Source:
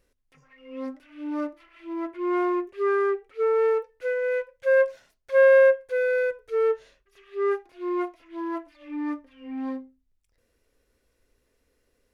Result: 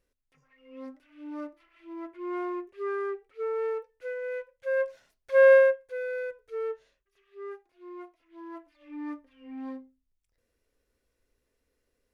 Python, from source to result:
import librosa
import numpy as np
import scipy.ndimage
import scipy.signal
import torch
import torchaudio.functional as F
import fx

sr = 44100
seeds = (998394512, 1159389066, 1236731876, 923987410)

y = fx.gain(x, sr, db=fx.line((4.72, -8.5), (5.52, 0.0), (5.8, -9.5), (6.56, -9.5), (7.52, -16.0), (8.06, -16.0), (9.03, -7.0)))